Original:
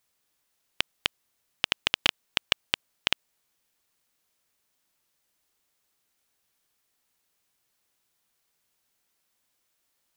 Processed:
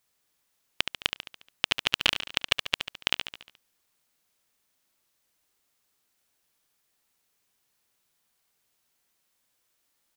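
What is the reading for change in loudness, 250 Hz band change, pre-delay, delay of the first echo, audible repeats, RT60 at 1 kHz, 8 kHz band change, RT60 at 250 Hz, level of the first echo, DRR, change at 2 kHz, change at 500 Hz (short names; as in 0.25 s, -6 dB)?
+1.0 dB, +1.0 dB, none, 71 ms, 5, none, +1.0 dB, none, -8.0 dB, none, +1.0 dB, +0.5 dB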